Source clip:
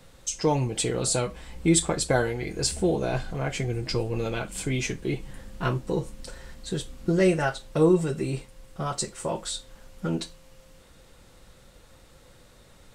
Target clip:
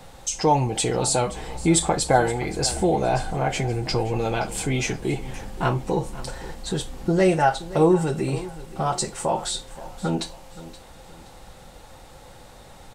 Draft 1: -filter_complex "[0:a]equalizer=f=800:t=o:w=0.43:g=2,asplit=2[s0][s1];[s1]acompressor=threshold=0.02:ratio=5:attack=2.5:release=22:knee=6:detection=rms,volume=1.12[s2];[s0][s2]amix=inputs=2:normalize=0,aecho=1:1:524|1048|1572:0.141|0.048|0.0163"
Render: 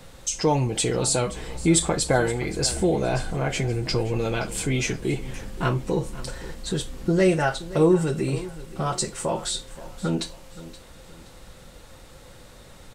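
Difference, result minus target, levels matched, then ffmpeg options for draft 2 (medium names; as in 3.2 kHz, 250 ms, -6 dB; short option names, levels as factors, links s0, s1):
1 kHz band -5.5 dB
-filter_complex "[0:a]equalizer=f=800:t=o:w=0.43:g=12,asplit=2[s0][s1];[s1]acompressor=threshold=0.02:ratio=5:attack=2.5:release=22:knee=6:detection=rms,volume=1.12[s2];[s0][s2]amix=inputs=2:normalize=0,aecho=1:1:524|1048|1572:0.141|0.048|0.0163"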